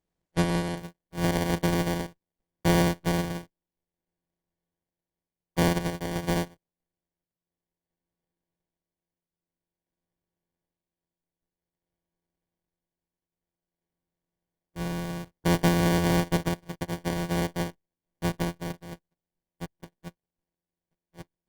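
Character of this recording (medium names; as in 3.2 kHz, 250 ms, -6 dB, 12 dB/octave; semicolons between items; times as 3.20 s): a buzz of ramps at a fixed pitch in blocks of 256 samples; tremolo triangle 0.51 Hz, depth 50%; aliases and images of a low sample rate 1.3 kHz, jitter 0%; Opus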